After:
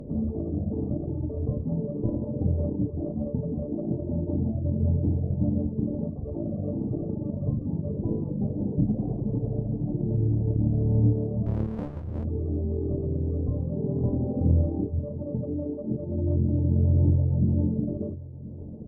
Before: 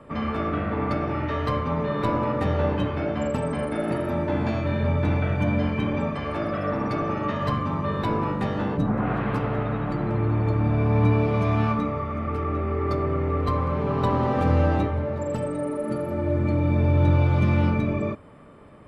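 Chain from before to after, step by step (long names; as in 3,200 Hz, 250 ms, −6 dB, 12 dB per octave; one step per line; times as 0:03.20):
reverb reduction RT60 1.4 s
in parallel at 0 dB: upward compression, threshold −22 dBFS
on the sum: Gaussian smoothing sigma 19 samples
tube saturation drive 7 dB, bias 0.35
on a send: single-tap delay 1,026 ms −17 dB
0:11.46–0:12.25: on the sum: windowed peak hold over 65 samples
level −2 dB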